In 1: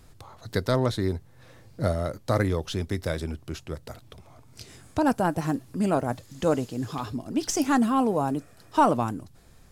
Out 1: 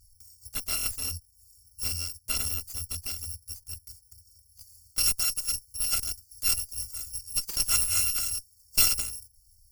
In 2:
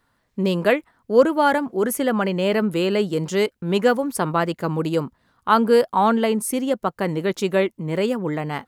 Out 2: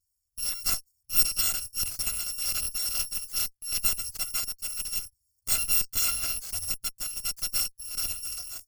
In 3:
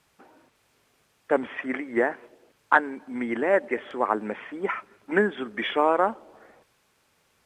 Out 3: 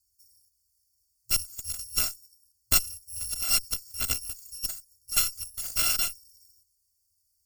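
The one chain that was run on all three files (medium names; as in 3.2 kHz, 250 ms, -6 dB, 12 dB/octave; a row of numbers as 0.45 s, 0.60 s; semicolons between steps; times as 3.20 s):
bit-reversed sample order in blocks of 256 samples; FFT band-reject 110–4300 Hz; Chebyshev shaper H 3 -17 dB, 6 -12 dB, 8 -30 dB, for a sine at -2.5 dBFS; normalise loudness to -27 LUFS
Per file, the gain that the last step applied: +0.5 dB, -6.0 dB, -0.5 dB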